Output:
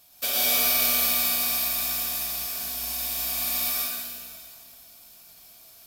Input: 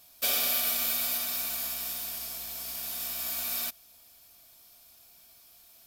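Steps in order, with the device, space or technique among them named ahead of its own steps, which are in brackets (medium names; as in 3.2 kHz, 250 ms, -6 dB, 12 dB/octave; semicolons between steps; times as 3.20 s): stairwell (reverberation RT60 2.2 s, pre-delay 101 ms, DRR -5 dB)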